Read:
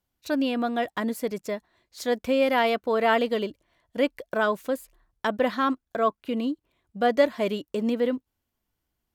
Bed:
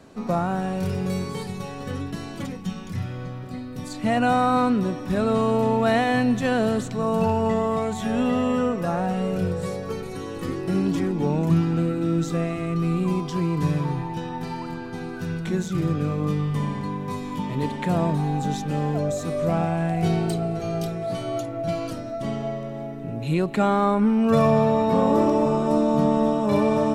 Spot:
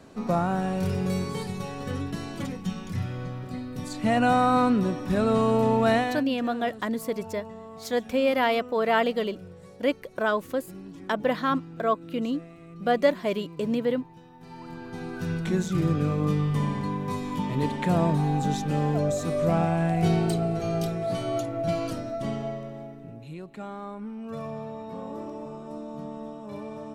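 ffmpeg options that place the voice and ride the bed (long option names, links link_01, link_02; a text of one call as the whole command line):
ffmpeg -i stem1.wav -i stem2.wav -filter_complex "[0:a]adelay=5850,volume=-1dB[link_01];[1:a]volume=18dB,afade=type=out:start_time=5.92:duration=0.32:silence=0.11885,afade=type=in:start_time=14.38:duration=0.93:silence=0.112202,afade=type=out:start_time=21.99:duration=1.35:silence=0.141254[link_02];[link_01][link_02]amix=inputs=2:normalize=0" out.wav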